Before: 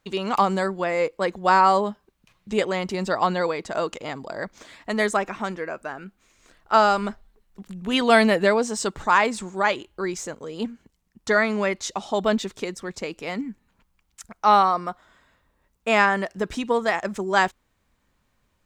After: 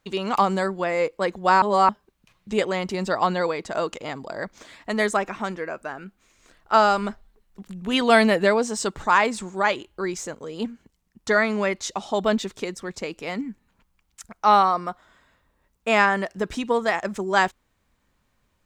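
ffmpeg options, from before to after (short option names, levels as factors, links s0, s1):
-filter_complex "[0:a]asplit=3[s0][s1][s2];[s0]atrim=end=1.622[s3];[s1]atrim=start=1.618:end=1.892,asetpts=PTS-STARTPTS,areverse[s4];[s2]atrim=start=1.888[s5];[s3][s4]acrossfade=d=0.004:c1=hsin:c2=hsin[s6];[s6][s5]acrossfade=d=0.004:c1=hsin:c2=hsin"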